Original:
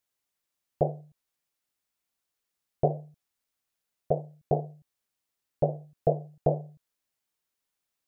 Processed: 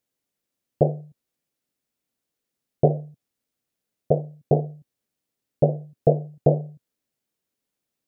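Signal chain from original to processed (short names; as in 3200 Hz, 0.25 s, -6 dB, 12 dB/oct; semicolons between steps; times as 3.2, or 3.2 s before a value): graphic EQ 125/250/500/1000 Hz +7/+9/+6/-3 dB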